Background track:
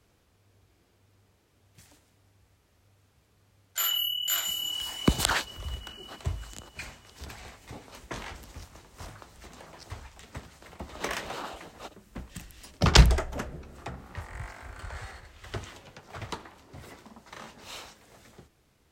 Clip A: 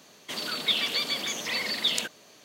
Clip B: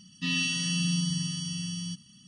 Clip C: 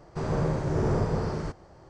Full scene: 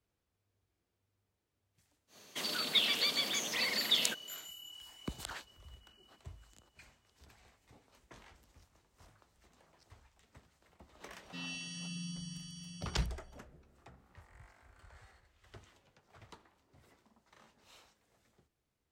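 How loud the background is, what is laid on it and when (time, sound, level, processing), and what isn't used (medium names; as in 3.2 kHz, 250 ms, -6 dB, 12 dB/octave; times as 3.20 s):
background track -18.5 dB
2.07 s: add A -5 dB, fades 0.10 s + treble shelf 5.2 kHz +3.5 dB
11.11 s: add B -15 dB
not used: C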